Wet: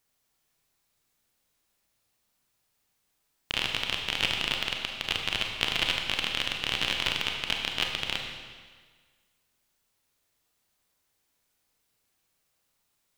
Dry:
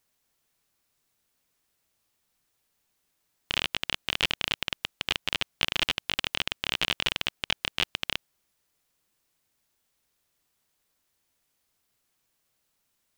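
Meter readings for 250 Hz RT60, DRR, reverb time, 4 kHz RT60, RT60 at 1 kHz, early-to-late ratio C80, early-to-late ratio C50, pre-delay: 1.6 s, 1.5 dB, 1.6 s, 1.5 s, 1.6 s, 5.0 dB, 3.5 dB, 28 ms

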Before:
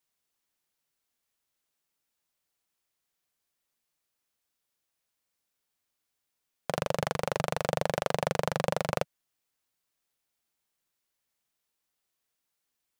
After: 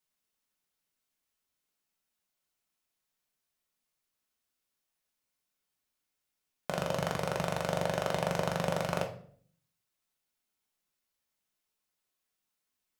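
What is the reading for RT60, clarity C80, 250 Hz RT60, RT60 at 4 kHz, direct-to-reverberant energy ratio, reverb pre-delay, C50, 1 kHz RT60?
0.55 s, 15.0 dB, 0.70 s, 0.40 s, 2.0 dB, 5 ms, 10.5 dB, 0.50 s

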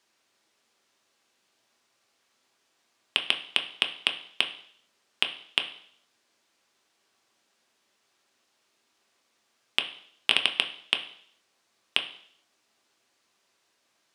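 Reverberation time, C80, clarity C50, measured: 0.60 s, 15.0 dB, 12.0 dB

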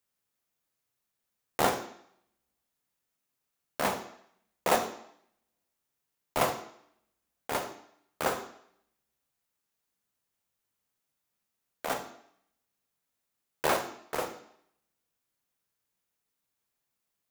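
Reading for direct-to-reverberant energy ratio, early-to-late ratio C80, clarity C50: 7.5 dB, 13.5 dB, 11.0 dB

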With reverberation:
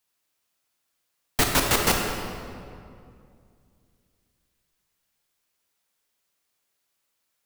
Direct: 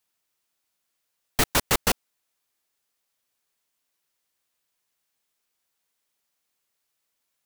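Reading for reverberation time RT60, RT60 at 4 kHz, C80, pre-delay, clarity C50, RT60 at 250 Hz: 2.4 s, 1.5 s, 3.5 dB, 20 ms, 2.5 dB, 2.9 s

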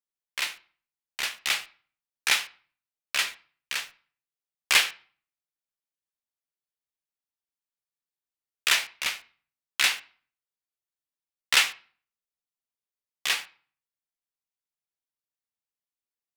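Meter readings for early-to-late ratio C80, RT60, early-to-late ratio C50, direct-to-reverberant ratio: 23.5 dB, 0.45 s, 18.5 dB, 10.0 dB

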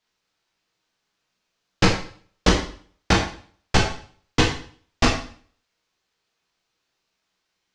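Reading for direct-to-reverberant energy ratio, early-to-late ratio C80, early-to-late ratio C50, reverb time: −1.5 dB, 9.5 dB, 6.0 dB, 0.50 s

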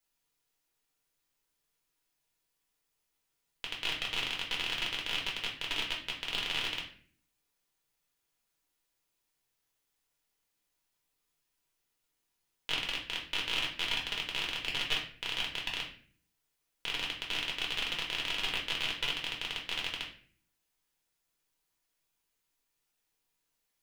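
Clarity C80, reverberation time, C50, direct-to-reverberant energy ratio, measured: 11.5 dB, 0.45 s, 7.5 dB, −2.5 dB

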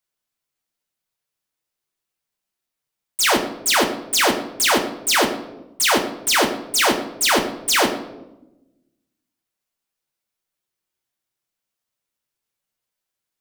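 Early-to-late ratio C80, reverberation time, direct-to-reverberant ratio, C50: 12.0 dB, 0.95 s, 2.0 dB, 10.0 dB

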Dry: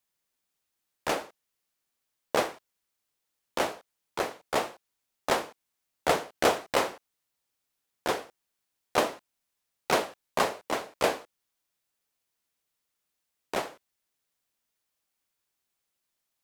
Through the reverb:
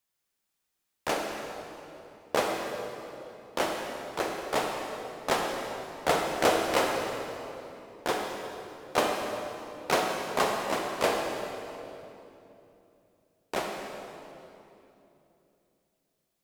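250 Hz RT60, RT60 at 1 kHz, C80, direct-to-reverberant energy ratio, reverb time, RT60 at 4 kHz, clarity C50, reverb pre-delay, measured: 3.8 s, 2.7 s, 3.0 dB, 1.5 dB, 3.0 s, 2.3 s, 2.0 dB, 39 ms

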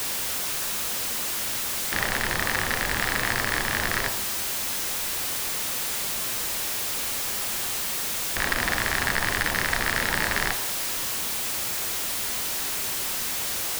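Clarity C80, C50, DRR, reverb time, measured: 16.0 dB, 13.5 dB, 9.0 dB, 0.80 s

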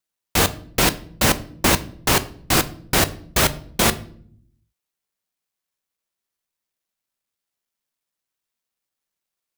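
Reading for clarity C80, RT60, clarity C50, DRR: 21.5 dB, 0.60 s, 18.0 dB, 11.5 dB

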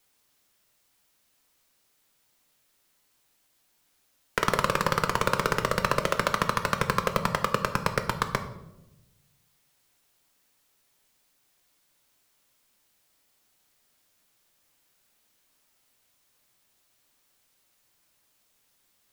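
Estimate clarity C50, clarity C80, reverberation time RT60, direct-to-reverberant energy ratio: 11.0 dB, 13.5 dB, 0.95 s, 7.0 dB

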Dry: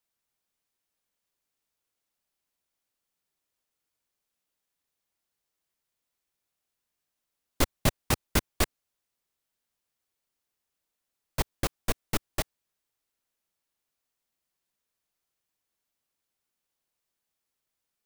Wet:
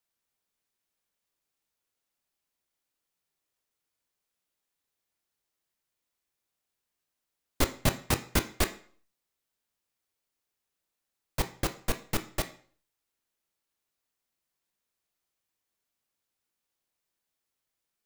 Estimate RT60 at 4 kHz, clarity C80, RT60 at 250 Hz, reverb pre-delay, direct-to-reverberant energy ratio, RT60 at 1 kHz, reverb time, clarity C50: 0.45 s, 18.5 dB, 0.45 s, 18 ms, 8.0 dB, 0.50 s, 0.50 s, 14.0 dB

